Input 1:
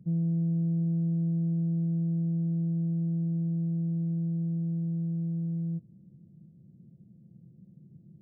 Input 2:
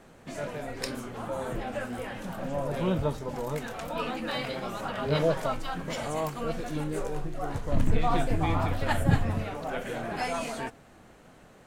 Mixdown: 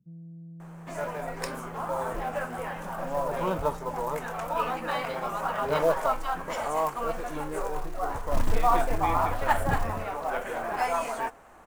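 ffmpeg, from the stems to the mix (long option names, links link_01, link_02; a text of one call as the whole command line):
ffmpeg -i stem1.wav -i stem2.wav -filter_complex "[0:a]volume=-17dB[link_01];[1:a]equalizer=frequency=125:width_type=o:width=1:gain=-12,equalizer=frequency=250:width_type=o:width=1:gain=-5,equalizer=frequency=1000:width_type=o:width=1:gain=8,equalizer=frequency=4000:width_type=o:width=1:gain=-8,acrusher=bits=6:mode=log:mix=0:aa=0.000001,adelay=600,volume=1dB[link_02];[link_01][link_02]amix=inputs=2:normalize=0" out.wav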